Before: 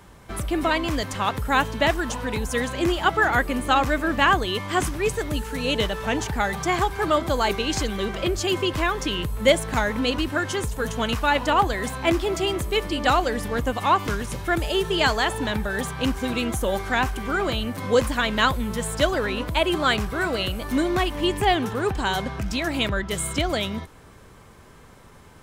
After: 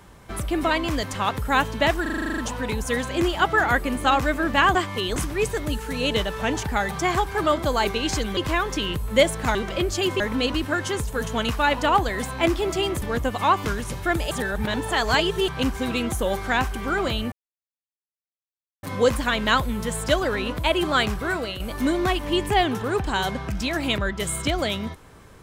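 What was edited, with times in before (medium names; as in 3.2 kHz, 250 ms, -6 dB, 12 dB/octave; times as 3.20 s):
2.02 s: stutter 0.04 s, 10 plays
4.39–4.80 s: reverse
8.01–8.66 s: move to 9.84 s
12.66–13.44 s: delete
14.73–15.90 s: reverse
17.74 s: insert silence 1.51 s
20.18–20.51 s: fade out, to -9 dB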